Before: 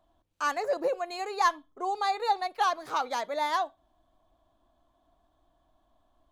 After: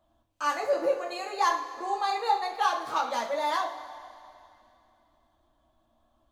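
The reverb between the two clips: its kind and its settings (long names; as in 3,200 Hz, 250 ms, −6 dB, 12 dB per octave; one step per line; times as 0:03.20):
coupled-rooms reverb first 0.34 s, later 2.7 s, from −17 dB, DRR −1.5 dB
level −2.5 dB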